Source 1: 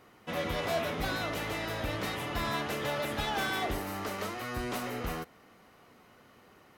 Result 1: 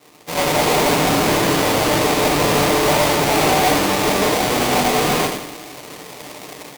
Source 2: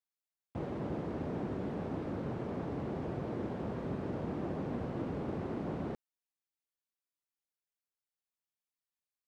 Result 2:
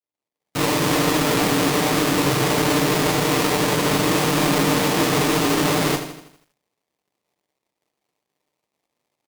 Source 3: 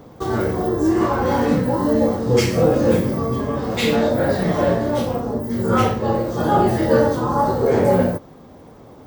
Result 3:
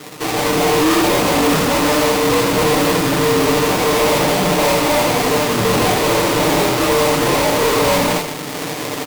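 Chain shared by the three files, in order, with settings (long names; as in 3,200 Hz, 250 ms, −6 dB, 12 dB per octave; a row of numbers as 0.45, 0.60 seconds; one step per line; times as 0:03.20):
running median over 9 samples
tilt shelving filter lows −3.5 dB, about 770 Hz
downward compressor 2 to 1, threshold −27 dBFS
comb filter 6.7 ms, depth 93%
three-band delay without the direct sound lows, mids, highs 30/150 ms, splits 740/2,600 Hz
sample-rate reduction 1,500 Hz, jitter 20%
high-pass filter 310 Hz 6 dB per octave
rectangular room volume 260 cubic metres, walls furnished, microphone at 0.41 metres
automatic gain control gain up to 13.5 dB
high-shelf EQ 2,200 Hz +8.5 dB
tube saturation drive 22 dB, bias 0.35
feedback echo at a low word length 81 ms, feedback 55%, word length 10 bits, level −11 dB
normalise the peak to −6 dBFS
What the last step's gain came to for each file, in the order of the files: +10.5, +9.5, +9.5 decibels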